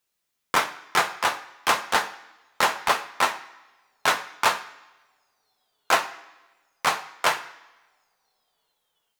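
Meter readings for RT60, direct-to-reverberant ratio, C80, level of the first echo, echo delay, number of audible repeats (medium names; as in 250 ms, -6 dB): 1.3 s, 5.5 dB, 16.0 dB, no echo, no echo, no echo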